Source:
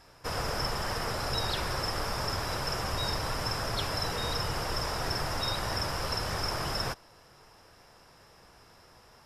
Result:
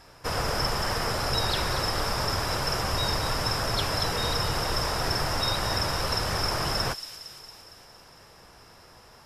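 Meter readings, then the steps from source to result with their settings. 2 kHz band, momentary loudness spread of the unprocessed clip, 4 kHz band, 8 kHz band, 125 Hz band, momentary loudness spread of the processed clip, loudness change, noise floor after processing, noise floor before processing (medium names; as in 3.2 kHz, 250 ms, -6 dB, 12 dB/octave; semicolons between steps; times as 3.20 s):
+4.5 dB, 2 LU, +5.5 dB, +5.5 dB, +4.5 dB, 4 LU, +5.0 dB, -52 dBFS, -58 dBFS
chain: feedback echo behind a high-pass 229 ms, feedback 61%, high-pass 3.3 kHz, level -8 dB; trim +4.5 dB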